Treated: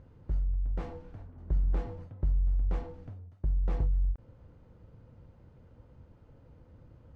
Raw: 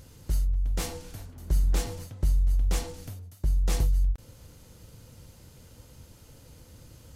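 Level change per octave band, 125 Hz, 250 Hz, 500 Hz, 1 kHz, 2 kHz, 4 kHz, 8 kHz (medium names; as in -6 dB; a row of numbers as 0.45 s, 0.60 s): -4.0 dB, -4.0 dB, -4.0 dB, -5.0 dB, -11.5 dB, -23.0 dB, under -30 dB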